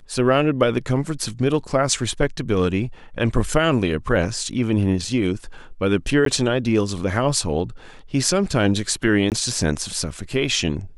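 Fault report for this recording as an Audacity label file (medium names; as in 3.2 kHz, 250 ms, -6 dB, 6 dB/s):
6.250000	6.260000	dropout 13 ms
9.300000	9.320000	dropout 18 ms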